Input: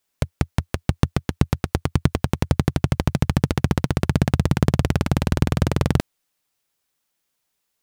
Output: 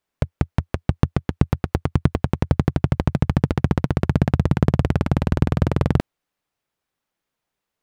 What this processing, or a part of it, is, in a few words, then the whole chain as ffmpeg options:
through cloth: -af "highshelf=frequency=3400:gain=-14,volume=1dB"

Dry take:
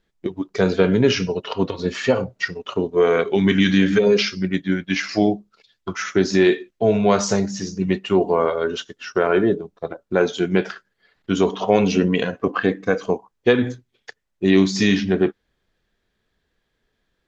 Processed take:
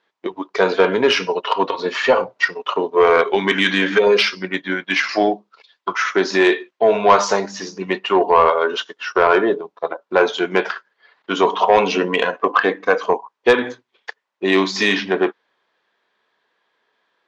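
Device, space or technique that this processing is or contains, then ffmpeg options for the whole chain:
intercom: -af "highpass=490,lowpass=4200,equalizer=frequency=1000:width_type=o:width=0.49:gain=8.5,asoftclip=type=tanh:threshold=-9.5dB,volume=7dB"

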